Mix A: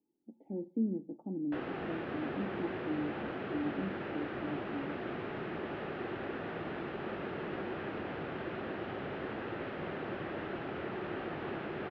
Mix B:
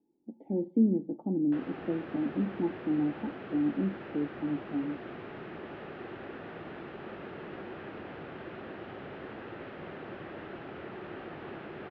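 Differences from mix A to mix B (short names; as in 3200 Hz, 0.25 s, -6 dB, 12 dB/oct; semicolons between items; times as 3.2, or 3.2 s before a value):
speech +8.0 dB; background -3.5 dB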